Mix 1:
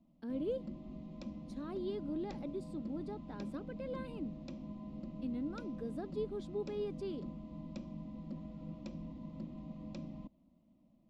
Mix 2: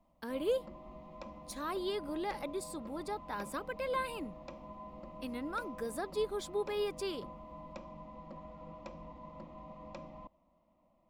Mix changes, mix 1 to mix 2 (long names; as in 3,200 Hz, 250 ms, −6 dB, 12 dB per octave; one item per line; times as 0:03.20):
speech: remove resonant band-pass 640 Hz, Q 0.87
master: add octave-band graphic EQ 125/250/500/1,000/2,000/4,000 Hz −6/−10/+5/+12/+5/−3 dB